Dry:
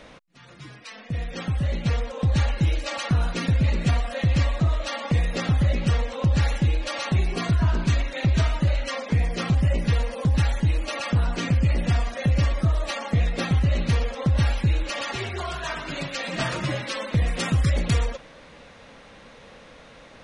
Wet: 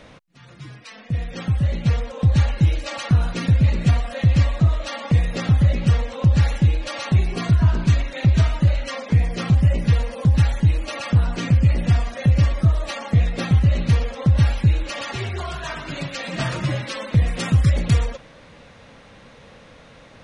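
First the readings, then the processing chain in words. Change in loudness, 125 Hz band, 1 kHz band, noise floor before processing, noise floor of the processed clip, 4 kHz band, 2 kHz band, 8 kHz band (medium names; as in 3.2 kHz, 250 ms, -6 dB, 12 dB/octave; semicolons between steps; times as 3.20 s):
+4.5 dB, +5.5 dB, 0.0 dB, -48 dBFS, -47 dBFS, 0.0 dB, 0.0 dB, 0.0 dB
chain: peaking EQ 110 Hz +7 dB 1.4 oct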